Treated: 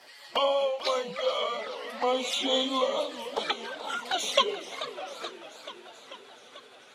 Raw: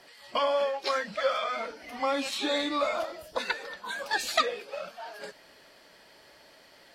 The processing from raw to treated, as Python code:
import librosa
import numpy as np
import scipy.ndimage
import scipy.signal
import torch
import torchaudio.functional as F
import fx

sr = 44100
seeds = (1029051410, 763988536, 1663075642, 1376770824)

y = fx.pitch_glide(x, sr, semitones=-4.5, runs='starting unshifted')
y = scipy.signal.sosfilt(scipy.signal.butter(2, 110.0, 'highpass', fs=sr, output='sos'), y)
y = fx.low_shelf(y, sr, hz=290.0, db=-8.5)
y = fx.env_flanger(y, sr, rest_ms=10.2, full_db=-30.5)
y = fx.echo_warbled(y, sr, ms=436, feedback_pct=69, rate_hz=2.8, cents=191, wet_db=-13.5)
y = y * librosa.db_to_amplitude(6.0)